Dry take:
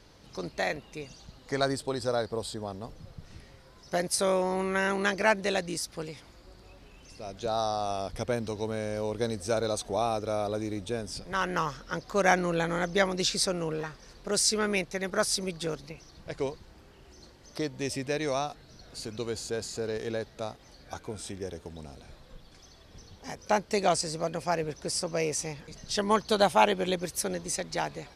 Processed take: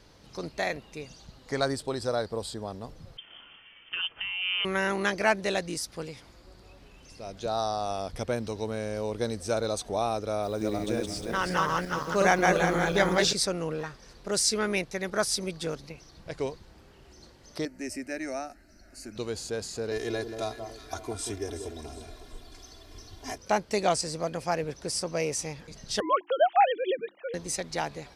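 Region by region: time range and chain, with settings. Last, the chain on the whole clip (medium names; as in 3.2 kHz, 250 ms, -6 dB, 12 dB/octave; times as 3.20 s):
3.17–4.65 s: high-pass 130 Hz 24 dB/octave + compressor with a negative ratio -31 dBFS + frequency inversion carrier 3.3 kHz
10.43–13.33 s: backward echo that repeats 178 ms, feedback 51%, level -1 dB + word length cut 10-bit, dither triangular
17.65–19.16 s: peaking EQ 770 Hz -8.5 dB 0.25 oct + static phaser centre 700 Hz, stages 8
19.91–23.38 s: treble shelf 6.8 kHz +6.5 dB + comb 2.9 ms, depth 89% + echo whose repeats swap between lows and highs 185 ms, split 1.2 kHz, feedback 61%, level -7 dB
26.00–27.34 s: formants replaced by sine waves + hum notches 50/100/150/200/250/300/350 Hz
whole clip: none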